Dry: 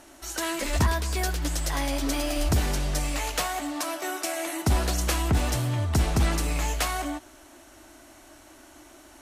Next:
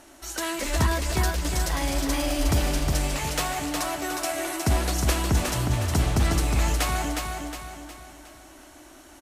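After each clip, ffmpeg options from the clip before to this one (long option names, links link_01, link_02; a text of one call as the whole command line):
ffmpeg -i in.wav -af "aecho=1:1:362|724|1086|1448|1810|2172:0.596|0.268|0.121|0.0543|0.0244|0.011" out.wav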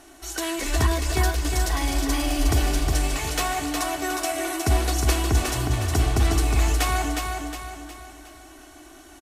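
ffmpeg -i in.wav -af "aecho=1:1:2.7:0.57" out.wav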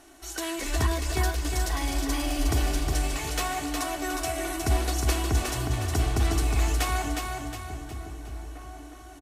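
ffmpeg -i in.wav -filter_complex "[0:a]asplit=2[link_01][link_02];[link_02]adelay=1749,volume=-13dB,highshelf=frequency=4000:gain=-39.4[link_03];[link_01][link_03]amix=inputs=2:normalize=0,volume=-4dB" out.wav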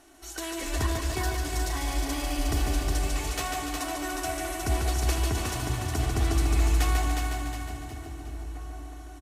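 ffmpeg -i in.wav -af "aecho=1:1:145|290|435|580|725|870|1015:0.562|0.298|0.158|0.0837|0.0444|0.0235|0.0125,volume=-3dB" out.wav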